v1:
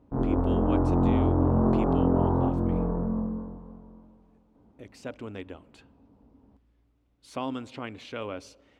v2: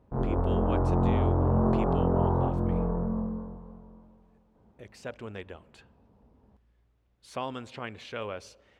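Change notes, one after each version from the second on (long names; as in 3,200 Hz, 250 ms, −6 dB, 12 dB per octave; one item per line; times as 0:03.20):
speech: add parametric band 1,700 Hz +4.5 dB 0.24 octaves
master: add parametric band 280 Hz −13 dB 0.28 octaves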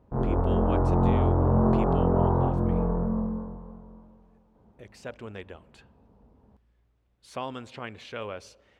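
background: send +6.0 dB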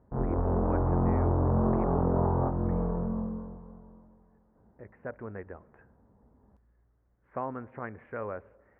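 speech: add Butterworth low-pass 1,900 Hz 48 dB per octave
background: send −11.5 dB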